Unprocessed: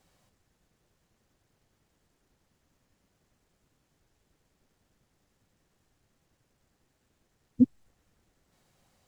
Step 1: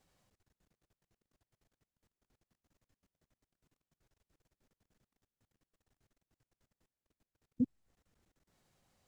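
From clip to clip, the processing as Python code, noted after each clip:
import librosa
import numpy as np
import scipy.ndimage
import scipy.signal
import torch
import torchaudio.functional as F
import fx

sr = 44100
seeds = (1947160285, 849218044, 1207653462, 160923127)

y = fx.level_steps(x, sr, step_db=24)
y = F.gain(torch.from_numpy(y), -3.5).numpy()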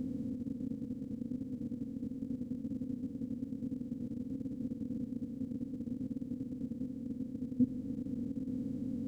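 y = fx.bin_compress(x, sr, power=0.2)
y = F.gain(torch.from_numpy(y), 1.0).numpy()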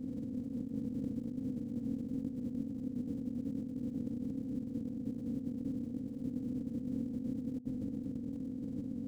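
y = fx.over_compress(x, sr, threshold_db=-43.0, ratio=-1.0)
y = F.gain(torch.from_numpy(y), 4.0).numpy()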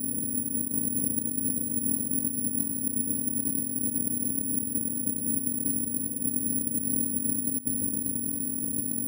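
y = (np.kron(x[::4], np.eye(4)[0]) * 4)[:len(x)]
y = F.gain(torch.from_numpy(y), 3.5).numpy()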